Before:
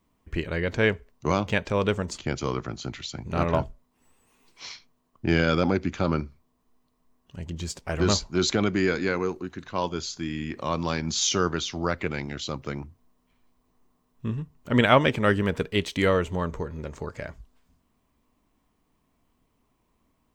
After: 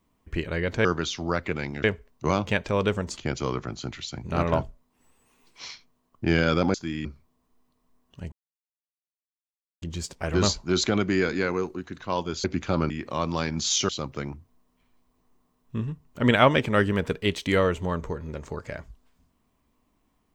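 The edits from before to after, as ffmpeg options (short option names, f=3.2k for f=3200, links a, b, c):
-filter_complex "[0:a]asplit=9[a][b][c][d][e][f][g][h][i];[a]atrim=end=0.852[j];[b]atrim=start=11.398:end=12.392[k];[c]atrim=start=0.848:end=5.752[l];[d]atrim=start=10.098:end=10.412[m];[e]atrim=start=6.208:end=7.48,asetpts=PTS-STARTPTS,afade=t=out:st=1.268:d=0.004:c=hsin,apad=pad_dur=1.5[n];[f]atrim=start=7.48:end=10.102,asetpts=PTS-STARTPTS,afade=t=in:d=0.004:c=hsin[o];[g]atrim=start=5.748:end=6.212[p];[h]atrim=start=10.408:end=11.402[q];[i]atrim=start=12.388[r];[j][k]acrossfade=d=0.004:c1=hsin:c2=hsin[s];[s][l]acrossfade=d=0.004:c1=hsin:c2=hsin[t];[t][m]acrossfade=d=0.004:c1=hsin:c2=hsin[u];[n][o]concat=n=2:v=0:a=1[v];[u][v]acrossfade=d=0.004:c1=hsin:c2=hsin[w];[w][p]acrossfade=d=0.004:c1=hsin:c2=hsin[x];[x][q]acrossfade=d=0.004:c1=hsin:c2=hsin[y];[y][r]acrossfade=d=0.004:c1=hsin:c2=hsin"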